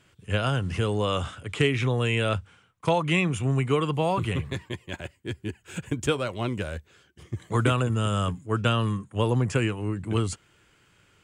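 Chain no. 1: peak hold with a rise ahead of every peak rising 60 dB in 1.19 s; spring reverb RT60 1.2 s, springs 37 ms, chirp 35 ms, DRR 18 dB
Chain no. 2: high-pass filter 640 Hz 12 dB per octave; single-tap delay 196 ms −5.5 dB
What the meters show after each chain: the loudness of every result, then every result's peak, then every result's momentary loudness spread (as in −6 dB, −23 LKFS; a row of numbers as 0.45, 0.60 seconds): −24.5, −31.0 LKFS; −7.5, −12.0 dBFS; 10, 13 LU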